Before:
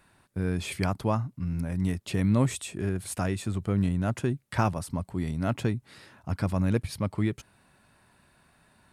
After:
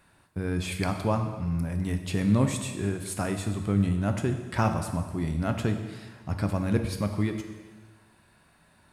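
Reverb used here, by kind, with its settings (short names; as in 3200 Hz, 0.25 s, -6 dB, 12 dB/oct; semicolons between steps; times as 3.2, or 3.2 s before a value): plate-style reverb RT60 1.4 s, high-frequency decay 1×, DRR 5.5 dB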